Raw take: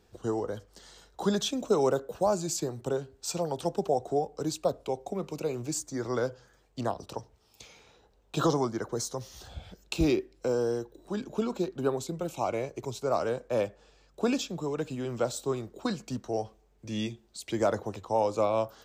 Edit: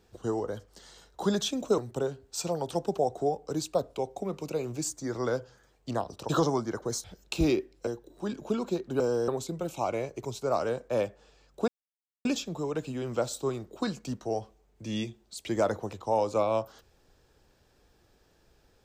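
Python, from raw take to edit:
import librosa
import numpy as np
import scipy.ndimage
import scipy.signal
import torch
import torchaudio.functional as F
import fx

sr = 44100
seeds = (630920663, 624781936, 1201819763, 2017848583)

y = fx.edit(x, sr, fx.cut(start_s=1.78, length_s=0.9),
    fx.cut(start_s=7.19, length_s=1.17),
    fx.cut(start_s=9.11, length_s=0.53),
    fx.move(start_s=10.47, length_s=0.28, to_s=11.88),
    fx.insert_silence(at_s=14.28, length_s=0.57), tone=tone)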